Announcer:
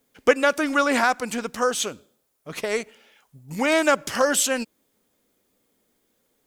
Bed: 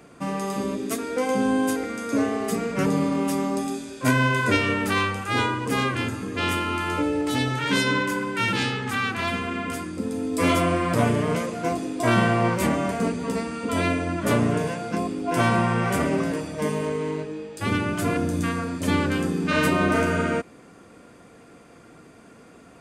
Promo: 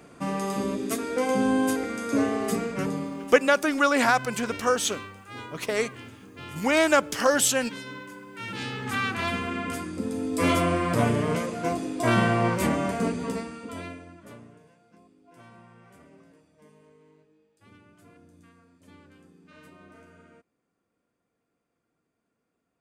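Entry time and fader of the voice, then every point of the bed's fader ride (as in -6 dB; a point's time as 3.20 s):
3.05 s, -1.0 dB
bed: 2.55 s -1 dB
3.49 s -17 dB
8.26 s -17 dB
8.94 s -2 dB
13.23 s -2 dB
14.59 s -30.5 dB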